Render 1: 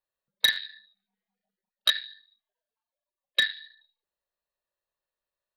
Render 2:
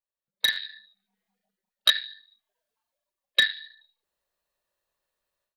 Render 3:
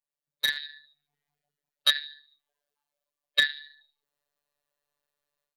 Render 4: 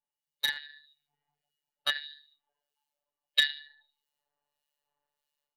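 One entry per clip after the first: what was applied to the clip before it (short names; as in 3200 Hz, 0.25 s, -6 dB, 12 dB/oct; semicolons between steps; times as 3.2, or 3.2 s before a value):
AGC gain up to 16 dB; gain -8.5 dB
robotiser 145 Hz
small resonant body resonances 850/2900 Hz, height 16 dB, ringing for 85 ms; harmonic tremolo 1.6 Hz, depth 70%, crossover 1900 Hz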